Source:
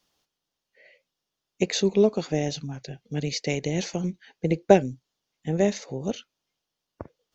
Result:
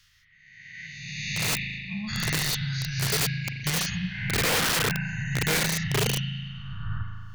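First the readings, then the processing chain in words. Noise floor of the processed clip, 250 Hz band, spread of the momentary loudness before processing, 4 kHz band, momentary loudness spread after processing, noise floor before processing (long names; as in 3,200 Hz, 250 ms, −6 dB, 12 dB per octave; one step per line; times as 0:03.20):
−57 dBFS, −5.5 dB, 15 LU, +8.0 dB, 13 LU, −85 dBFS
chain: peak hold with a rise ahead of every peak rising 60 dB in 1.43 s
reverb reduction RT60 0.79 s
gate on every frequency bin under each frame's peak −30 dB strong
elliptic band-stop filter 130–1,600 Hz, stop band 80 dB
high-shelf EQ 3,800 Hz −9 dB
in parallel at +2 dB: downward compressor 6 to 1, threshold −46 dBFS, peak gain reduction 17.5 dB
on the sum: gate with flip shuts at −21 dBFS, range −38 dB
spring reverb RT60 2.1 s, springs 37 ms, chirp 80 ms, DRR 1.5 dB
wrap-around overflow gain 27 dB
level +7.5 dB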